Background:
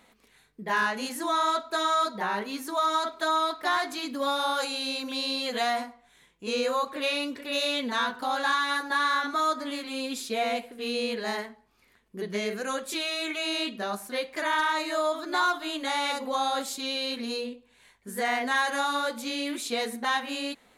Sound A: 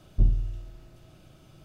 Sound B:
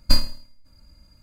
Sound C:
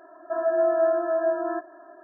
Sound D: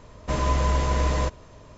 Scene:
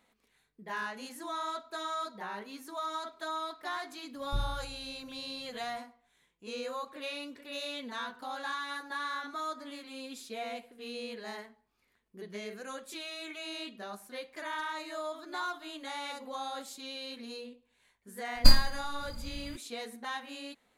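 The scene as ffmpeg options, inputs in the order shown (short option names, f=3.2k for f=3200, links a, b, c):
-filter_complex "[0:a]volume=-11dB[a];[2:a]dynaudnorm=f=120:g=3:m=11.5dB[b];[1:a]atrim=end=1.64,asetpts=PTS-STARTPTS,volume=-12dB,afade=t=in:d=0.004:c=hsin,afade=t=out:st=1.636:d=0.004:c=hsin,adelay=4140[c];[b]atrim=end=1.22,asetpts=PTS-STARTPTS,volume=-2dB,afade=t=in:d=0.004:c=hsin,afade=t=out:st=1.216:d=0.004:c=hsin,adelay=18350[d];[a][c][d]amix=inputs=3:normalize=0"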